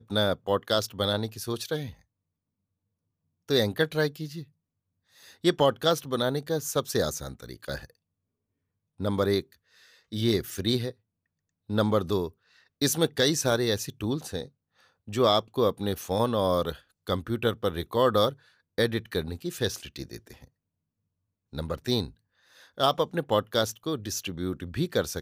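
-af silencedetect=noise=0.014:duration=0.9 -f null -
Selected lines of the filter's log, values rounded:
silence_start: 1.91
silence_end: 3.49 | silence_duration: 1.58
silence_start: 4.43
silence_end: 5.44 | silence_duration: 1.01
silence_start: 7.85
silence_end: 9.00 | silence_duration: 1.16
silence_start: 20.44
silence_end: 21.53 | silence_duration: 1.09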